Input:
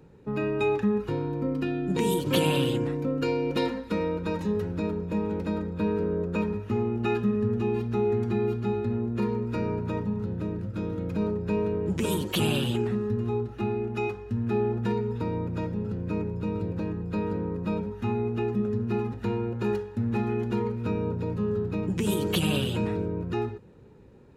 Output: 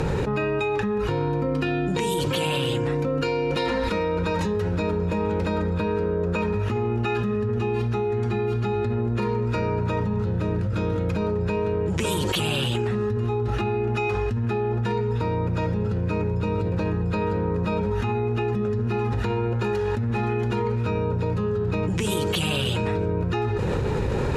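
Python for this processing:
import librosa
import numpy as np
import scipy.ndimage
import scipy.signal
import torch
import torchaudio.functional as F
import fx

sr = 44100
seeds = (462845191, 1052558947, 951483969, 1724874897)

y = scipy.signal.sosfilt(scipy.signal.butter(2, 10000.0, 'lowpass', fs=sr, output='sos'), x)
y = fx.peak_eq(y, sr, hz=250.0, db=-9.5, octaves=1.4)
y = fx.env_flatten(y, sr, amount_pct=100)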